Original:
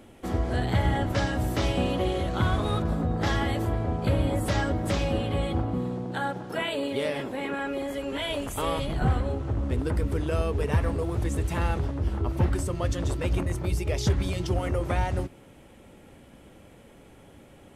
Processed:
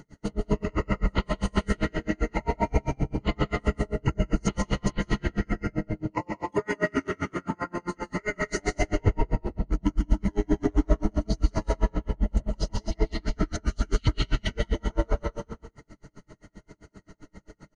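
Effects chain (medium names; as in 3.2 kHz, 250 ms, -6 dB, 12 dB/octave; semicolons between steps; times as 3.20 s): reverb removal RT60 0.99 s; rippled EQ curve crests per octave 1.8, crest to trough 12 dB; in parallel at -0.5 dB: peak limiter -21.5 dBFS, peak gain reduction 10 dB; on the sum: pitch shift -8 st; speakerphone echo 230 ms, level -8 dB; algorithmic reverb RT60 0.99 s, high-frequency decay 0.9×, pre-delay 115 ms, DRR -1 dB; logarithmic tremolo 7.6 Hz, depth 38 dB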